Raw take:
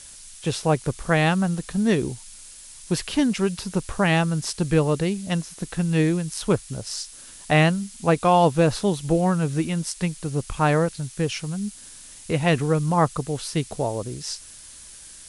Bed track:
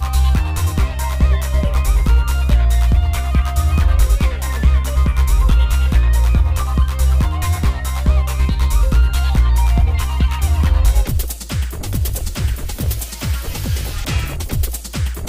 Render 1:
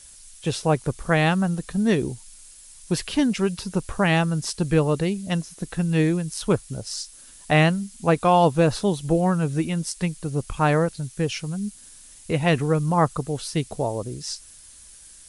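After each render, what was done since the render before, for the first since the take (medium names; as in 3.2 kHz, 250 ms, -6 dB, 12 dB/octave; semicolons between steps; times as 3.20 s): noise reduction 6 dB, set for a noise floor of -44 dBFS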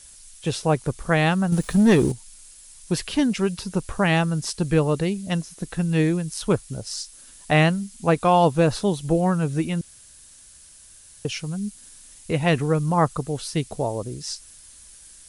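1.52–2.12 s: waveshaping leveller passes 2; 9.81–11.25 s: room tone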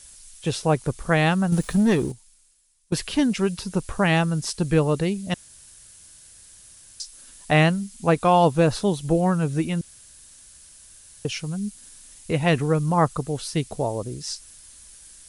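1.64–2.92 s: fade out quadratic, to -21 dB; 5.34–7.00 s: room tone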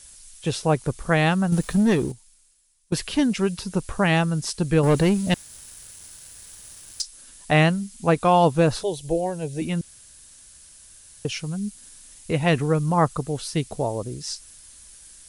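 4.83–7.02 s: waveshaping leveller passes 2; 8.83–9.62 s: static phaser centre 520 Hz, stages 4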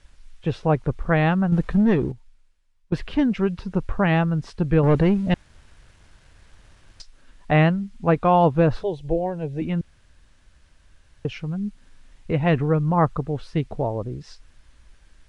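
low-pass 2.2 kHz 12 dB/octave; bass shelf 69 Hz +10 dB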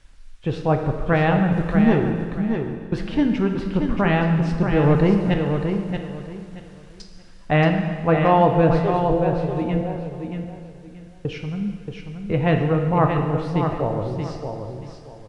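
feedback delay 629 ms, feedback 24%, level -6.5 dB; plate-style reverb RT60 1.8 s, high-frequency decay 0.9×, DRR 4 dB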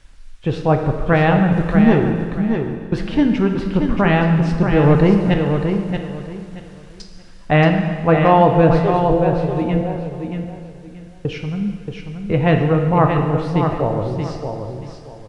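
trim +4 dB; peak limiter -2 dBFS, peak gain reduction 1 dB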